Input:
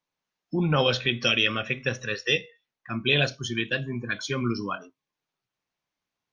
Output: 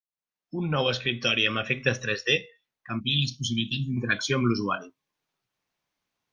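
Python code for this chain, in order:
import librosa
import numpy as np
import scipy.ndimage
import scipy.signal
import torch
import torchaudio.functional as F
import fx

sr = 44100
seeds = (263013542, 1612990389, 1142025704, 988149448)

y = fx.fade_in_head(x, sr, length_s=1.54)
y = fx.ellip_bandstop(y, sr, low_hz=250.0, high_hz=3200.0, order=3, stop_db=40, at=(2.99, 3.96), fade=0.02)
y = fx.rider(y, sr, range_db=3, speed_s=0.5)
y = y * librosa.db_to_amplitude(2.5)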